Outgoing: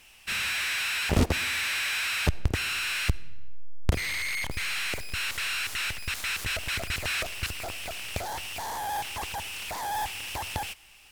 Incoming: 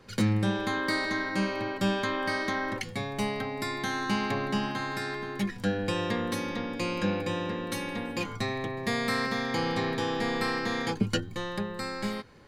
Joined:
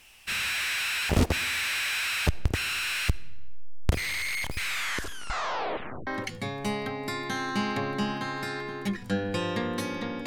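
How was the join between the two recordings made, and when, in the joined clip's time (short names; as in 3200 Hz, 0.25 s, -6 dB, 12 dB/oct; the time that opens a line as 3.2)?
outgoing
4.61 tape stop 1.46 s
6.07 switch to incoming from 2.61 s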